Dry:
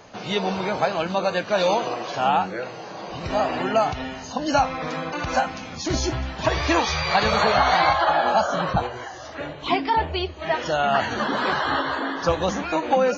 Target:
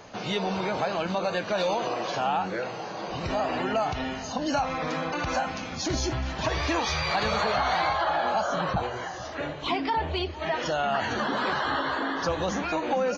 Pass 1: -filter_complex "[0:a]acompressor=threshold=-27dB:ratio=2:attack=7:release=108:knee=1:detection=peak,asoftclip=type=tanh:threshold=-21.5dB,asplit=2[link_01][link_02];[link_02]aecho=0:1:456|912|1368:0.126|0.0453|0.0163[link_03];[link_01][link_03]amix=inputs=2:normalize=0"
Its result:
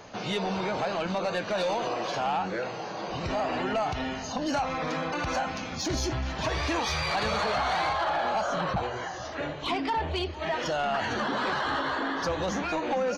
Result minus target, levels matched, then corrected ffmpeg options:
soft clipping: distortion +12 dB
-filter_complex "[0:a]acompressor=threshold=-27dB:ratio=2:attack=7:release=108:knee=1:detection=peak,asoftclip=type=tanh:threshold=-13.5dB,asplit=2[link_01][link_02];[link_02]aecho=0:1:456|912|1368:0.126|0.0453|0.0163[link_03];[link_01][link_03]amix=inputs=2:normalize=0"

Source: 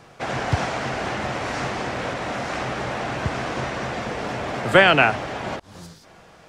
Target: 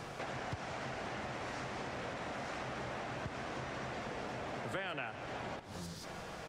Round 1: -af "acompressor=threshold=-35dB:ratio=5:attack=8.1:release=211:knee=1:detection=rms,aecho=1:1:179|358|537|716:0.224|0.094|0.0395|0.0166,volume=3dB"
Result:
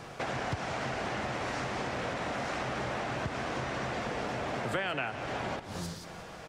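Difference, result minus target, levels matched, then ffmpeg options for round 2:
downward compressor: peak gain reduction −7 dB
-af "acompressor=threshold=-44dB:ratio=5:attack=8.1:release=211:knee=1:detection=rms,aecho=1:1:179|358|537|716:0.224|0.094|0.0395|0.0166,volume=3dB"

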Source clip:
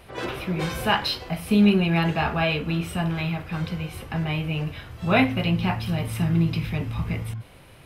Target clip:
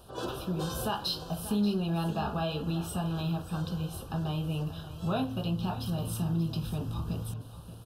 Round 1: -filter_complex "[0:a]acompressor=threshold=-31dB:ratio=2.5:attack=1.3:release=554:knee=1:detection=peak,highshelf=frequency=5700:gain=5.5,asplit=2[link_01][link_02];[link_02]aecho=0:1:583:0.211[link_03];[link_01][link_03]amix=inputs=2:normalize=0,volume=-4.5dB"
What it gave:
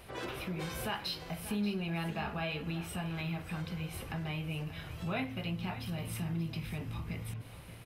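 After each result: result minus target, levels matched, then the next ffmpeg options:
2,000 Hz band +9.5 dB; downward compressor: peak gain reduction +6 dB
-filter_complex "[0:a]acompressor=threshold=-31dB:ratio=2.5:attack=1.3:release=554:knee=1:detection=peak,asuperstop=centerf=2100:order=4:qfactor=1.3,highshelf=frequency=5700:gain=5.5,asplit=2[link_01][link_02];[link_02]aecho=0:1:583:0.211[link_03];[link_01][link_03]amix=inputs=2:normalize=0,volume=-4.5dB"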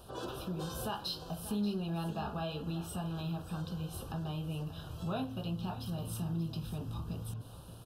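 downward compressor: peak gain reduction +6 dB
-filter_complex "[0:a]acompressor=threshold=-21dB:ratio=2.5:attack=1.3:release=554:knee=1:detection=peak,asuperstop=centerf=2100:order=4:qfactor=1.3,highshelf=frequency=5700:gain=5.5,asplit=2[link_01][link_02];[link_02]aecho=0:1:583:0.211[link_03];[link_01][link_03]amix=inputs=2:normalize=0,volume=-4.5dB"

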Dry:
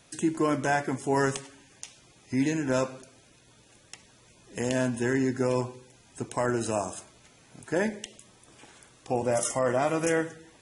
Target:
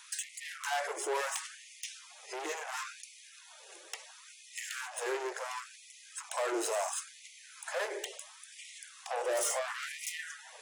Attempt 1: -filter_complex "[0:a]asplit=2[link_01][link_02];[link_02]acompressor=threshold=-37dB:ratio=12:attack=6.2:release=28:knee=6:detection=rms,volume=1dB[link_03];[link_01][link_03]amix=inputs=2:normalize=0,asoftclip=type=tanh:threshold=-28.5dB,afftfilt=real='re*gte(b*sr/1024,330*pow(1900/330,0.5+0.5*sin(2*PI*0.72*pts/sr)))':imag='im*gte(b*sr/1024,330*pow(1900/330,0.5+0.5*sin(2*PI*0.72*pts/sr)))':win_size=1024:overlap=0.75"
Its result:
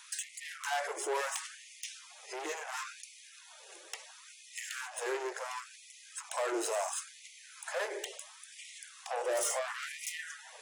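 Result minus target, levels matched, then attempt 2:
downward compressor: peak gain reduction +5.5 dB
-filter_complex "[0:a]asplit=2[link_01][link_02];[link_02]acompressor=threshold=-31dB:ratio=12:attack=6.2:release=28:knee=6:detection=rms,volume=1dB[link_03];[link_01][link_03]amix=inputs=2:normalize=0,asoftclip=type=tanh:threshold=-28.5dB,afftfilt=real='re*gte(b*sr/1024,330*pow(1900/330,0.5+0.5*sin(2*PI*0.72*pts/sr)))':imag='im*gte(b*sr/1024,330*pow(1900/330,0.5+0.5*sin(2*PI*0.72*pts/sr)))':win_size=1024:overlap=0.75"

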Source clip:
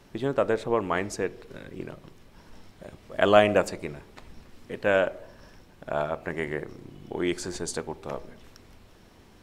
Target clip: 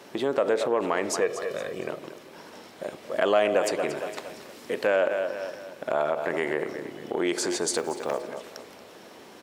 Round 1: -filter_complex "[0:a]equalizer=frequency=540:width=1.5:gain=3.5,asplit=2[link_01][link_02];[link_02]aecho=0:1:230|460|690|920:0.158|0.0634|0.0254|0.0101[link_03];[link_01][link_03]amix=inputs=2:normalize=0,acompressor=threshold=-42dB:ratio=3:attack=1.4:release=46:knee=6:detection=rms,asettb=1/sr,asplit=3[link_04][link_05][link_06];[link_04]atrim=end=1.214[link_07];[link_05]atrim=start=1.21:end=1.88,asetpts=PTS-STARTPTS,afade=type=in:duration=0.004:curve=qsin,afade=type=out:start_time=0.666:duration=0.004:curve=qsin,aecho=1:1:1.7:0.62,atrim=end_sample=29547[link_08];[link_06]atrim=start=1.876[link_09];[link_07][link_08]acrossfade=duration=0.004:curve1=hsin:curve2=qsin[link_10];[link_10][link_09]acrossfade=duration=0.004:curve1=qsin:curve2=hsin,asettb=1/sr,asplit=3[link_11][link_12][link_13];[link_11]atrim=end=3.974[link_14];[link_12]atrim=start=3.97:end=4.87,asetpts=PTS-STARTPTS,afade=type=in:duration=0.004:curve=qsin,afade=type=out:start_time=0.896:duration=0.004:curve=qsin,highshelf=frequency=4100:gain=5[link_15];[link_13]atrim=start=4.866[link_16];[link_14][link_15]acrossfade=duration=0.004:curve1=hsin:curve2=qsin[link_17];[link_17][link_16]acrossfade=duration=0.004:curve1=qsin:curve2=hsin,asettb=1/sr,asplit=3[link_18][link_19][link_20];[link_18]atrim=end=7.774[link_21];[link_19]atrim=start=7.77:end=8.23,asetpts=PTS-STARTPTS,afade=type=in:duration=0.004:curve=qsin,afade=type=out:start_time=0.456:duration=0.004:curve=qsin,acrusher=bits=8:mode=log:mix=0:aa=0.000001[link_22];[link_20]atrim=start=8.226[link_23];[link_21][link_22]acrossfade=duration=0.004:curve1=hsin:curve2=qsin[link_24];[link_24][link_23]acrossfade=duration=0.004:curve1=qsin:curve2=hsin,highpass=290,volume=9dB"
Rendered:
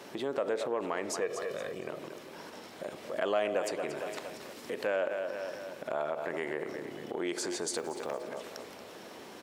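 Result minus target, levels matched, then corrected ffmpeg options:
downward compressor: peak gain reduction +8 dB
-filter_complex "[0:a]equalizer=frequency=540:width=1.5:gain=3.5,asplit=2[link_01][link_02];[link_02]aecho=0:1:230|460|690|920:0.158|0.0634|0.0254|0.0101[link_03];[link_01][link_03]amix=inputs=2:normalize=0,acompressor=threshold=-30dB:ratio=3:attack=1.4:release=46:knee=6:detection=rms,asettb=1/sr,asplit=3[link_04][link_05][link_06];[link_04]atrim=end=1.214[link_07];[link_05]atrim=start=1.21:end=1.88,asetpts=PTS-STARTPTS,afade=type=in:duration=0.004:curve=qsin,afade=type=out:start_time=0.666:duration=0.004:curve=qsin,aecho=1:1:1.7:0.62,atrim=end_sample=29547[link_08];[link_06]atrim=start=1.876[link_09];[link_07][link_08]acrossfade=duration=0.004:curve1=hsin:curve2=qsin[link_10];[link_10][link_09]acrossfade=duration=0.004:curve1=qsin:curve2=hsin,asettb=1/sr,asplit=3[link_11][link_12][link_13];[link_11]atrim=end=3.974[link_14];[link_12]atrim=start=3.97:end=4.87,asetpts=PTS-STARTPTS,afade=type=in:duration=0.004:curve=qsin,afade=type=out:start_time=0.896:duration=0.004:curve=qsin,highshelf=frequency=4100:gain=5[link_15];[link_13]atrim=start=4.866[link_16];[link_14][link_15]acrossfade=duration=0.004:curve1=hsin:curve2=qsin[link_17];[link_17][link_16]acrossfade=duration=0.004:curve1=qsin:curve2=hsin,asettb=1/sr,asplit=3[link_18][link_19][link_20];[link_18]atrim=end=7.774[link_21];[link_19]atrim=start=7.77:end=8.23,asetpts=PTS-STARTPTS,afade=type=in:duration=0.004:curve=qsin,afade=type=out:start_time=0.456:duration=0.004:curve=qsin,acrusher=bits=8:mode=log:mix=0:aa=0.000001[link_22];[link_20]atrim=start=8.226[link_23];[link_21][link_22]acrossfade=duration=0.004:curve1=hsin:curve2=qsin[link_24];[link_24][link_23]acrossfade=duration=0.004:curve1=qsin:curve2=hsin,highpass=290,volume=9dB"

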